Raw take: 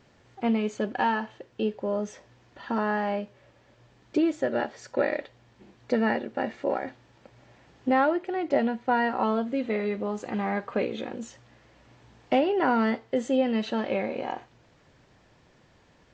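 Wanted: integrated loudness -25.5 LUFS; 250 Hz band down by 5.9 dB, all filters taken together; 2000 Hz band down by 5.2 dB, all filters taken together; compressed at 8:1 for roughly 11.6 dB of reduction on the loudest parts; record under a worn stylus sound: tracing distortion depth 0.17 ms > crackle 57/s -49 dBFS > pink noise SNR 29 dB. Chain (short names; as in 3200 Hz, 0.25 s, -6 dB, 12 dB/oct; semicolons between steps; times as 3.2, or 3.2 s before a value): bell 250 Hz -7 dB; bell 2000 Hz -6.5 dB; compressor 8:1, threshold -33 dBFS; tracing distortion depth 0.17 ms; crackle 57/s -49 dBFS; pink noise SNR 29 dB; gain +13 dB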